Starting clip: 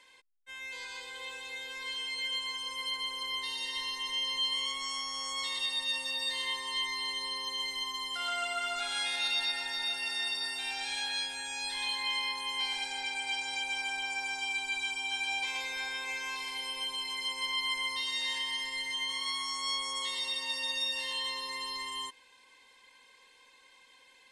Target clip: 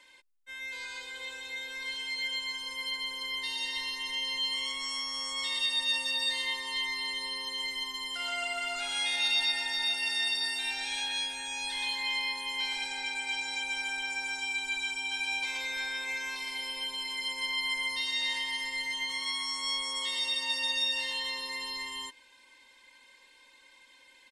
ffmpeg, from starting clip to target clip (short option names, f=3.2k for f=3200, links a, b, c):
-af "aecho=1:1:3.3:0.56"